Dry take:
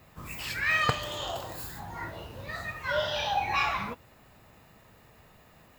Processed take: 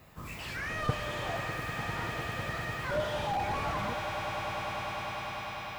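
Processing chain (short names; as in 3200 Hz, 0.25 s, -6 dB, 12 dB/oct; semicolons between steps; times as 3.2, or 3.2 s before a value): swelling echo 0.1 s, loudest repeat 8, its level -14 dB; slew limiter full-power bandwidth 30 Hz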